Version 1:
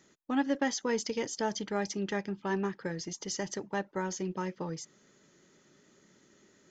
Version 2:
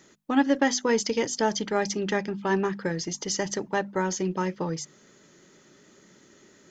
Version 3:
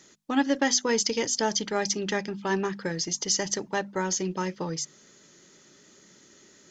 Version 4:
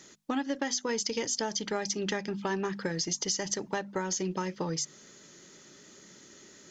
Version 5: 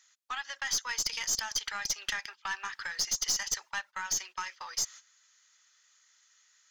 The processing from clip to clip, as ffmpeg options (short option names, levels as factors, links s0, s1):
-af "bandreject=f=50:t=h:w=6,bandreject=f=100:t=h:w=6,bandreject=f=150:t=h:w=6,bandreject=f=200:t=h:w=6,bandreject=f=250:t=h:w=6,volume=2.37"
-af "equalizer=f=5600:t=o:w=1.9:g=7.5,volume=0.75"
-af "acompressor=threshold=0.0316:ratio=6,volume=1.26"
-af "highpass=f=1100:w=0.5412,highpass=f=1100:w=1.3066,agate=range=0.2:threshold=0.00355:ratio=16:detection=peak,aeval=exprs='(tanh(20*val(0)+0.3)-tanh(0.3))/20':c=same,volume=1.68"